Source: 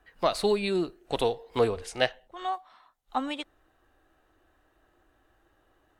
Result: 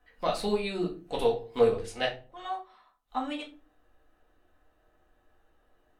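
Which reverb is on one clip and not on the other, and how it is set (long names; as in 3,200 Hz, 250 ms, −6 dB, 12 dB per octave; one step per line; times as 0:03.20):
rectangular room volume 160 cubic metres, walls furnished, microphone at 1.9 metres
level −7 dB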